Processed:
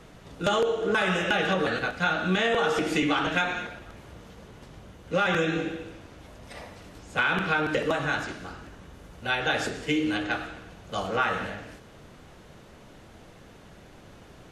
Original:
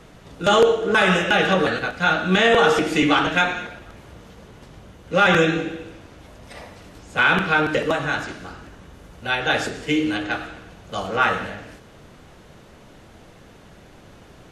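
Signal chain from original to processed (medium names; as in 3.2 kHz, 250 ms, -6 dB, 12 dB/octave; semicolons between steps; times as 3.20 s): compression, threshold -18 dBFS, peak gain reduction 7.5 dB; trim -3 dB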